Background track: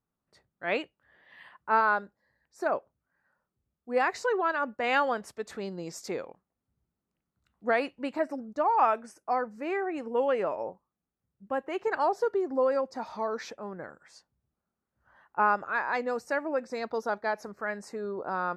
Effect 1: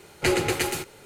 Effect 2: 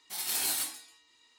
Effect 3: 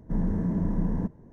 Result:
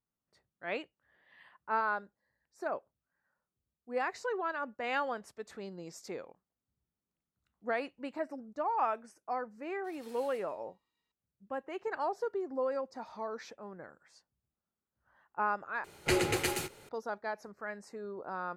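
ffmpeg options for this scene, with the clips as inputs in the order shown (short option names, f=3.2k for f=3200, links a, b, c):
-filter_complex "[0:a]volume=-7.5dB[a];[2:a]lowpass=f=1.7k:p=1[b];[a]asplit=2[c][d];[c]atrim=end=15.844[e];[1:a]atrim=end=1.05,asetpts=PTS-STARTPTS,volume=-6dB[f];[d]atrim=start=16.886[g];[b]atrim=end=1.38,asetpts=PTS-STARTPTS,volume=-16.5dB,afade=t=in:d=0.004:c=hsin,afade=t=out:st=1.376:d=0.004:c=hsin,adelay=9740[h];[e][f]acrossfade=d=0.004:c1=hsin:c2=hsin[i];[i][g]acrossfade=d=0.004:c1=hsin:c2=hsin[j];[j][h]amix=inputs=2:normalize=0"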